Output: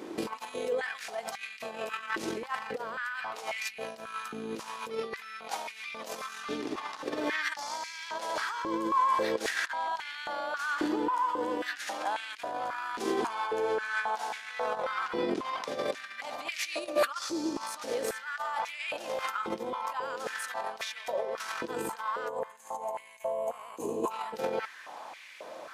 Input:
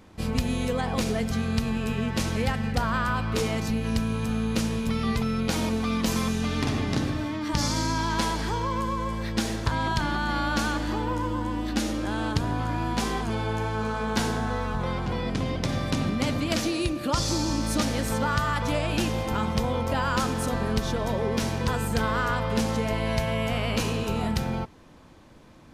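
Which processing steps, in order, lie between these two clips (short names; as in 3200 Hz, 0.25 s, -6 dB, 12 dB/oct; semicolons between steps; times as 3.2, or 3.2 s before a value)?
negative-ratio compressor -32 dBFS, ratio -0.5; spectral gain 22.29–24.11, 1200–6200 Hz -17 dB; stepped high-pass 3.7 Hz 350–2200 Hz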